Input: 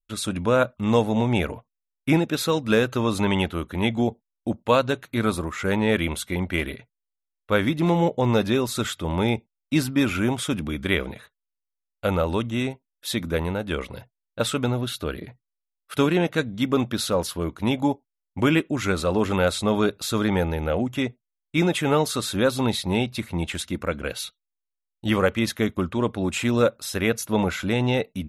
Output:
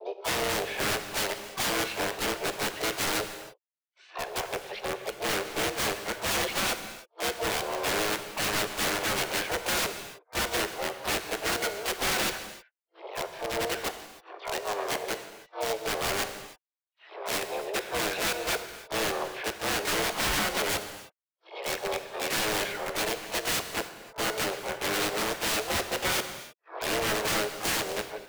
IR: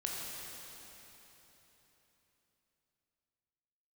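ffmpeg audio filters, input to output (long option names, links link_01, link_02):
-filter_complex "[0:a]areverse,highpass=frequency=160:width_type=q:width=0.5412,highpass=frequency=160:width_type=q:width=1.307,lowpass=frequency=2400:width_type=q:width=0.5176,lowpass=frequency=2400:width_type=q:width=0.7071,lowpass=frequency=2400:width_type=q:width=1.932,afreqshift=210,aeval=exprs='(mod(8.91*val(0)+1,2)-1)/8.91':channel_layout=same,asplit=2[link_01][link_02];[1:a]atrim=start_sample=2205,afade=type=out:start_time=0.37:duration=0.01,atrim=end_sample=16758[link_03];[link_02][link_03]afir=irnorm=-1:irlink=0,volume=-5dB[link_04];[link_01][link_04]amix=inputs=2:normalize=0,asplit=4[link_05][link_06][link_07][link_08];[link_06]asetrate=58866,aresample=44100,atempo=0.749154,volume=-9dB[link_09];[link_07]asetrate=66075,aresample=44100,atempo=0.66742,volume=-4dB[link_10];[link_08]asetrate=88200,aresample=44100,atempo=0.5,volume=-13dB[link_11];[link_05][link_09][link_10][link_11]amix=inputs=4:normalize=0,volume=-9dB"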